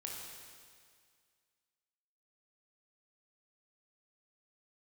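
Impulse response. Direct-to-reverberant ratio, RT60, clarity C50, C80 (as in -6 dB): -2.0 dB, 2.0 s, 0.0 dB, 2.0 dB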